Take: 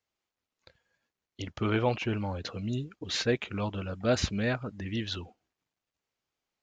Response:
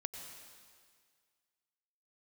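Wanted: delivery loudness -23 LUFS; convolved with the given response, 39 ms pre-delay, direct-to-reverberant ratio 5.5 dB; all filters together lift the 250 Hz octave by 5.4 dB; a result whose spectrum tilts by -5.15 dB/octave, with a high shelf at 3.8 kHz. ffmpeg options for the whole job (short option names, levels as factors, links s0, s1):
-filter_complex "[0:a]equalizer=f=250:t=o:g=6.5,highshelf=f=3800:g=6,asplit=2[s0][s1];[1:a]atrim=start_sample=2205,adelay=39[s2];[s1][s2]afir=irnorm=-1:irlink=0,volume=0.631[s3];[s0][s3]amix=inputs=2:normalize=0,volume=1.68"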